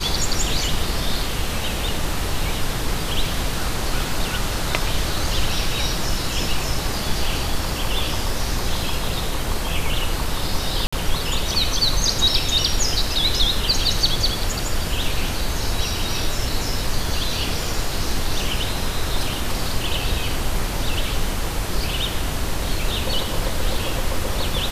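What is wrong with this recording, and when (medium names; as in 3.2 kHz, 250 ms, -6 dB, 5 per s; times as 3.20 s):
10.87–10.93 s: dropout 55 ms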